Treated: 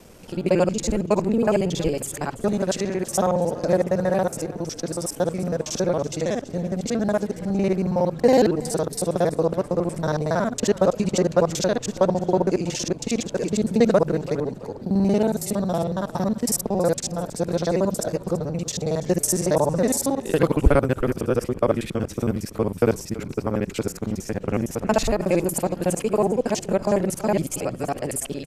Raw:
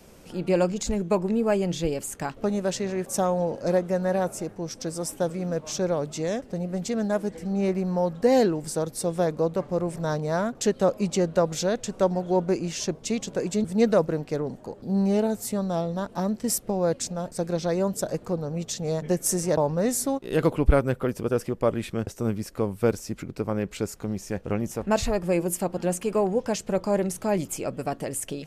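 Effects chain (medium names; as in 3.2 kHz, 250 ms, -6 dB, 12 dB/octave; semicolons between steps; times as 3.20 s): time reversed locally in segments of 46 ms; frequency-shifting echo 332 ms, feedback 38%, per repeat -32 Hz, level -17 dB; trim +3.5 dB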